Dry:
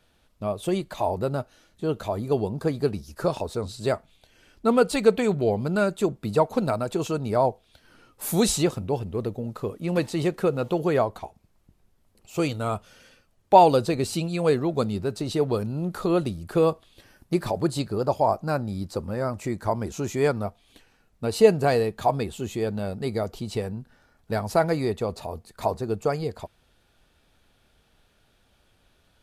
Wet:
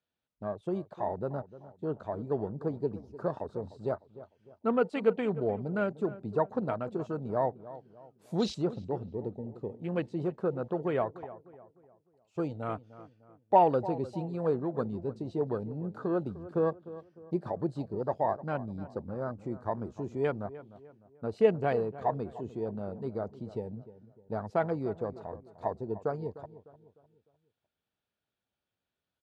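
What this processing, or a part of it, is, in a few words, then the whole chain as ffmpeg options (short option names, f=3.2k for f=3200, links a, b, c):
over-cleaned archive recording: -filter_complex "[0:a]highpass=100,lowpass=5.6k,afwtdn=0.02,asplit=2[a][b];[b]adelay=302,lowpass=f=1.7k:p=1,volume=-15.5dB,asplit=2[c][d];[d]adelay=302,lowpass=f=1.7k:p=1,volume=0.41,asplit=2[e][f];[f]adelay=302,lowpass=f=1.7k:p=1,volume=0.41,asplit=2[g][h];[h]adelay=302,lowpass=f=1.7k:p=1,volume=0.41[i];[a][c][e][g][i]amix=inputs=5:normalize=0,volume=-7.5dB"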